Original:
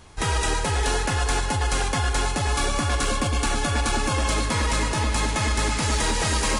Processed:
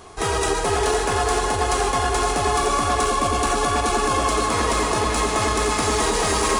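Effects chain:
in parallel at −10.5 dB: hard clipping −31 dBFS, distortion −6 dB
on the sum: high-shelf EQ 6,400 Hz +5 dB
hollow resonant body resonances 410/700/1,100 Hz, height 12 dB, ringing for 25 ms
brickwall limiter −12.5 dBFS, peak gain reduction 5.5 dB
low-shelf EQ 170 Hz −5 dB
on a send: echo with a time of its own for lows and highs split 430 Hz, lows 106 ms, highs 515 ms, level −7 dB

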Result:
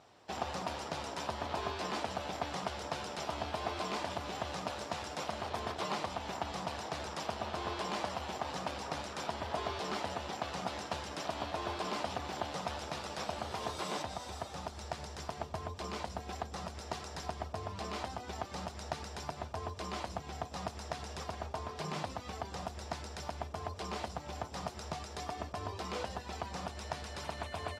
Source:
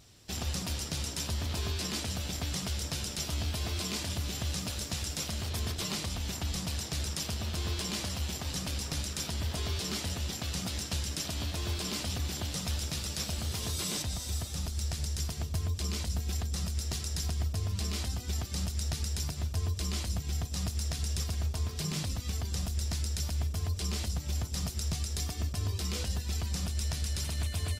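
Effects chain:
resonant band-pass 830 Hz, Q 1.7
level +10.5 dB

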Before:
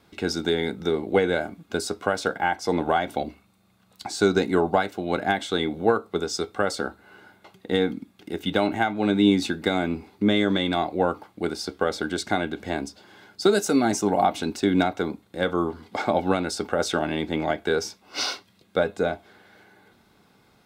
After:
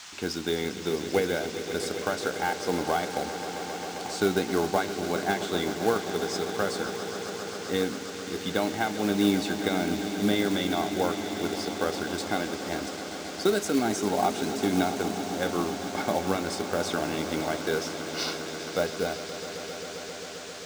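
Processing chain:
noise in a band 740–7,200 Hz −40 dBFS
echo that builds up and dies away 133 ms, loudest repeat 5, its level −14 dB
floating-point word with a short mantissa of 2 bits
level −5 dB

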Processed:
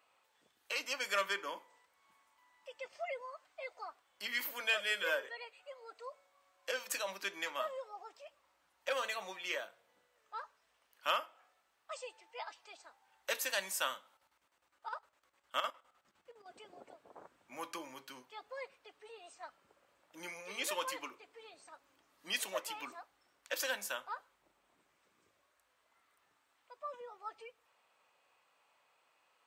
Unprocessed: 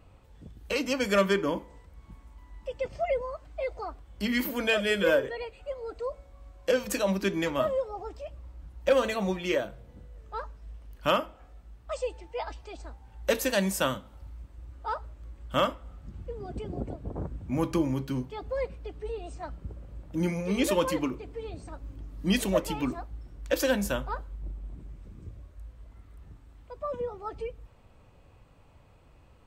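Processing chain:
0:14.11–0:16.49: square-wave tremolo 9.8 Hz, depth 65%, duty 60%
high-pass filter 980 Hz 12 dB per octave
level −4.5 dB

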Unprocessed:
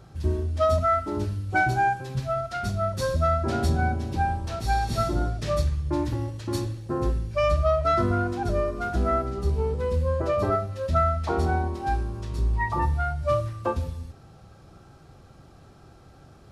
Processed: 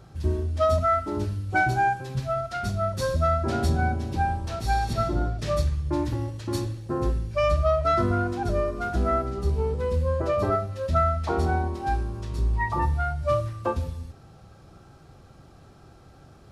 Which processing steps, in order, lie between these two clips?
0:04.93–0:05.39: high-shelf EQ 5,400 Hz −10.5 dB

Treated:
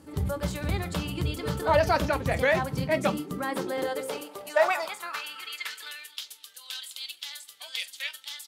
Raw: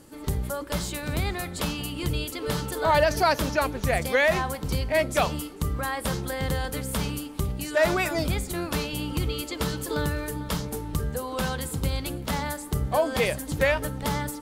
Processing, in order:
tempo change 1.7×
high-shelf EQ 5,000 Hz −6 dB
mains-hum notches 50/100/150/200 Hz
high-pass filter sweep 83 Hz → 3,400 Hz, 0:02.25–0:06.22
on a send: convolution reverb, pre-delay 5 ms, DRR 10.5 dB
on the sum: level −1.5 dB

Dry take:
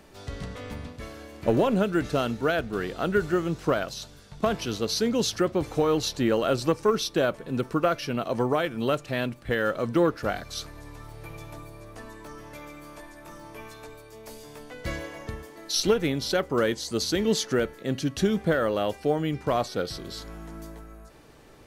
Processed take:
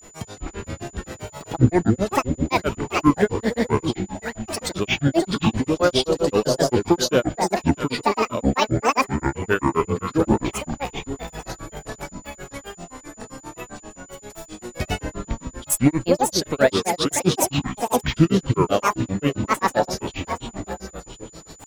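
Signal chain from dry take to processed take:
delay that swaps between a low-pass and a high-pass 242 ms, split 1,000 Hz, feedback 73%, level −5 dB
granular cloud 125 ms, grains 7.6 per second, pitch spread up and down by 12 semitones
steady tone 7,000 Hz −55 dBFS
level +8.5 dB

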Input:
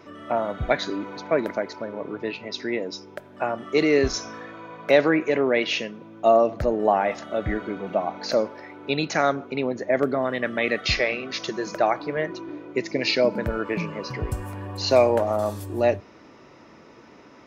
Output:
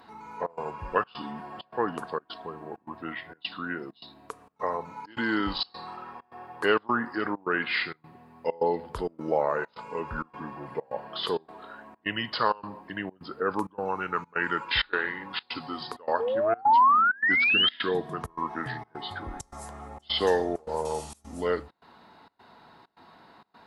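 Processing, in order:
sound drawn into the spectrogram rise, 0:11.95–0:13.07, 600–4,500 Hz −20 dBFS
parametric band 1,300 Hz +12 dB 1.2 octaves
gate pattern "xxxx.xxxx." 177 BPM −24 dB
first-order pre-emphasis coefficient 0.8
change of speed 0.738×
level +2.5 dB

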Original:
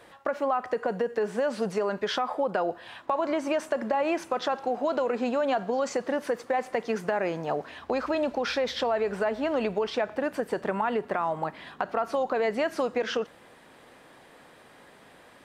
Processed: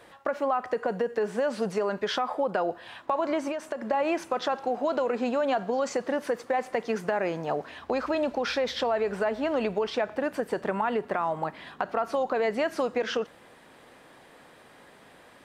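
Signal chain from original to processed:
0:03.48–0:03.91: downward compressor, threshold −29 dBFS, peak gain reduction 7 dB

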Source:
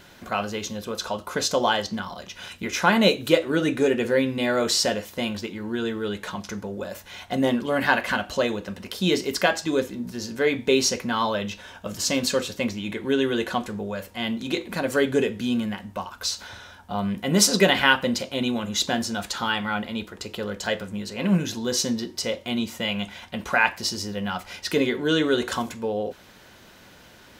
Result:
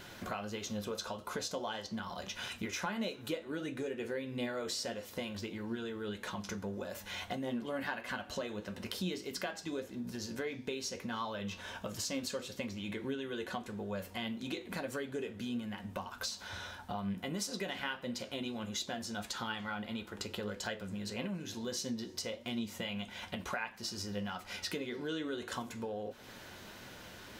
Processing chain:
downward compressor 5 to 1, threshold −37 dBFS, peak gain reduction 22 dB
flanger 1.6 Hz, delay 7.5 ms, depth 3.8 ms, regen +63%
on a send: convolution reverb RT60 2.4 s, pre-delay 249 ms, DRR 23 dB
on the sum: level +3.5 dB

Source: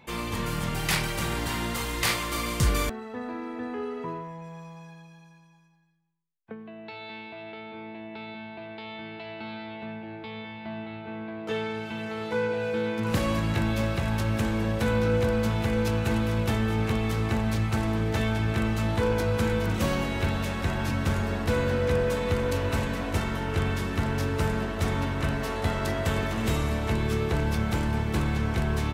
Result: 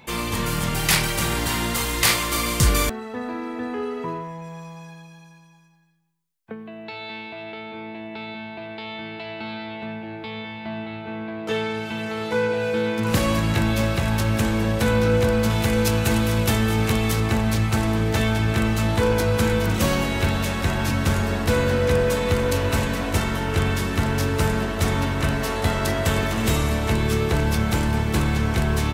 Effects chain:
high-shelf EQ 4,500 Hz +6 dB, from 0:15.50 +12 dB, from 0:17.20 +6.5 dB
level +5 dB

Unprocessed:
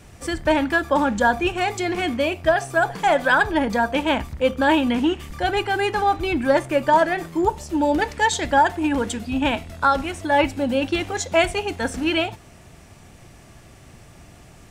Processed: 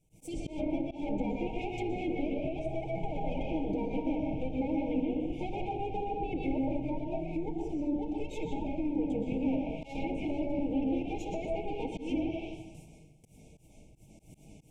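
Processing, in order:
lower of the sound and its delayed copy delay 6.4 ms
soft clipping −12 dBFS, distortion −19 dB
linear-phase brick-wall band-stop 930–2,100 Hz
noise gate with hold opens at −37 dBFS
parametric band 4,400 Hz −12.5 dB 0.69 octaves
downward compressor 6 to 1, threshold −28 dBFS, peak gain reduction 11.5 dB
convolution reverb RT60 1.0 s, pre-delay 113 ms, DRR −1.5 dB
volume swells 158 ms
treble cut that deepens with the level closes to 1,700 Hz, closed at −24 dBFS
parametric band 1,100 Hz −10.5 dB 3 octaves
0:06.85–0:09.02: phaser whose notches keep moving one way falling 2 Hz

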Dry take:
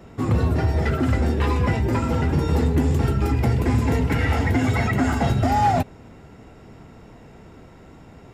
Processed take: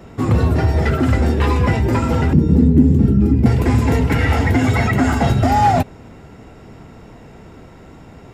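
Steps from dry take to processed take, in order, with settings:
0:02.33–0:03.46: drawn EQ curve 130 Hz 0 dB, 200 Hz +11 dB, 820 Hz −15 dB
level +5 dB

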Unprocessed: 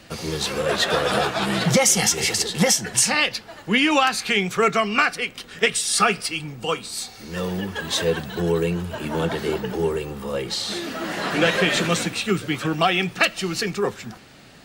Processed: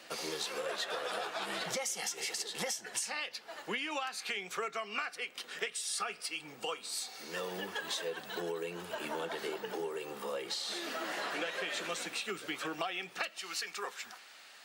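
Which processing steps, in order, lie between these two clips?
high-pass filter 440 Hz 12 dB per octave, from 0:13.38 960 Hz
downward compressor 6 to 1, threshold −31 dBFS, peak gain reduction 16.5 dB
level −4 dB

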